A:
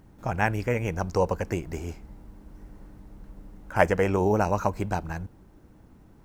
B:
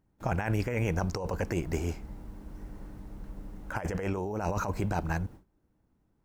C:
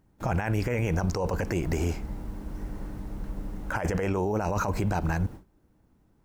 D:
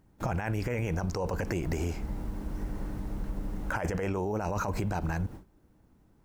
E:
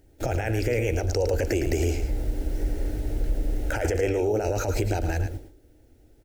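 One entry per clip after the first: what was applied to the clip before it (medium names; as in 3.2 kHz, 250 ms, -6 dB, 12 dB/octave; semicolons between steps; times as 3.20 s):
gate with hold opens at -41 dBFS; compressor with a negative ratio -29 dBFS, ratio -1; trim -1 dB
peak limiter -26 dBFS, peak gain reduction 9 dB; trim +7.5 dB
compression, threshold -29 dBFS, peak gain reduction 7 dB; trim +1.5 dB
static phaser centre 440 Hz, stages 4; delay 109 ms -8.5 dB; trim +9 dB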